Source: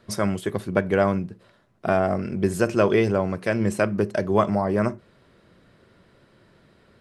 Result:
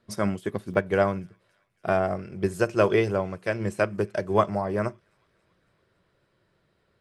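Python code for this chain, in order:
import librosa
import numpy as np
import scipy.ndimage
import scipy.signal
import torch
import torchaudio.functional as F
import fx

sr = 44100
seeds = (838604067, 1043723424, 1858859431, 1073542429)

y = fx.peak_eq(x, sr, hz=240.0, db=fx.steps((0.0, 2.5), (0.74, -8.5)), octaves=0.41)
y = fx.echo_wet_highpass(y, sr, ms=279, feedback_pct=70, hz=2000.0, wet_db=-22)
y = fx.upward_expand(y, sr, threshold_db=-39.0, expansion=1.5)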